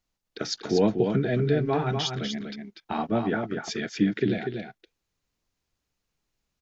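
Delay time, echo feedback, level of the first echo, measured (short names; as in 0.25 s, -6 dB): 0.243 s, no steady repeat, -6.0 dB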